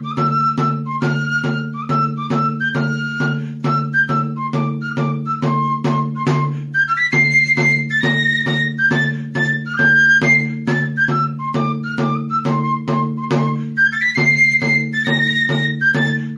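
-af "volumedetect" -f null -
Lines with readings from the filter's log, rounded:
mean_volume: -17.2 dB
max_volume: -4.0 dB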